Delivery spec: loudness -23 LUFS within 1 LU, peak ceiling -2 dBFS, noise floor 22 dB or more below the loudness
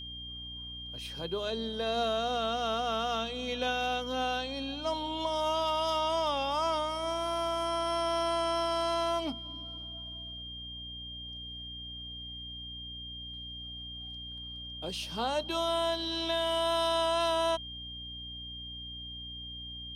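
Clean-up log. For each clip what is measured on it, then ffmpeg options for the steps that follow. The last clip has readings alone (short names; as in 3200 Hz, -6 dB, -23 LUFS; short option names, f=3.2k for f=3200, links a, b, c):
hum 60 Hz; harmonics up to 300 Hz; hum level -46 dBFS; steady tone 3200 Hz; tone level -41 dBFS; loudness -33.0 LUFS; peak -19.0 dBFS; loudness target -23.0 LUFS
-> -af "bandreject=f=60:t=h:w=6,bandreject=f=120:t=h:w=6,bandreject=f=180:t=h:w=6,bandreject=f=240:t=h:w=6,bandreject=f=300:t=h:w=6"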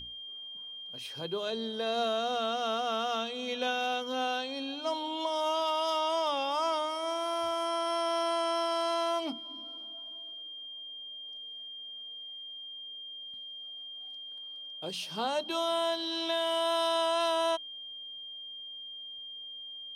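hum none; steady tone 3200 Hz; tone level -41 dBFS
-> -af "bandreject=f=3.2k:w=30"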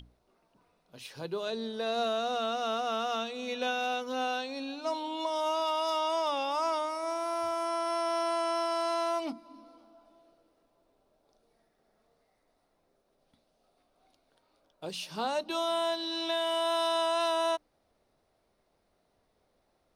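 steady tone none; loudness -31.5 LUFS; peak -20.0 dBFS; loudness target -23.0 LUFS
-> -af "volume=8.5dB"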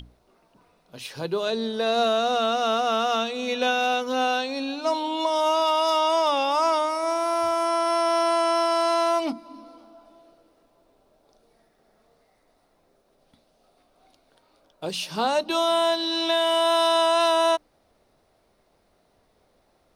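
loudness -23.0 LUFS; peak -11.5 dBFS; noise floor -65 dBFS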